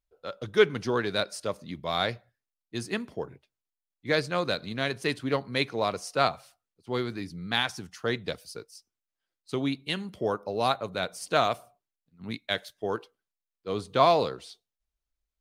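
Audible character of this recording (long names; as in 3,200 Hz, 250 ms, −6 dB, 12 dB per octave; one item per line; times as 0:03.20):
background noise floor −89 dBFS
spectral slope −3.0 dB per octave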